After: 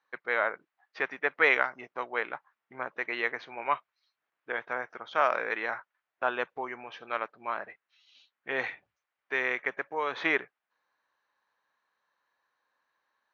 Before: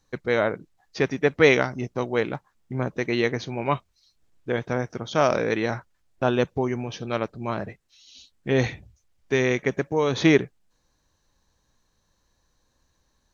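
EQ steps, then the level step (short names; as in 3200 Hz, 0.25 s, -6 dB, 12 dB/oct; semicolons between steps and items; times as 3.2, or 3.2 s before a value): band-pass 1400 Hz, Q 0.8; LPF 1900 Hz 12 dB/oct; tilt +4 dB/oct; 0.0 dB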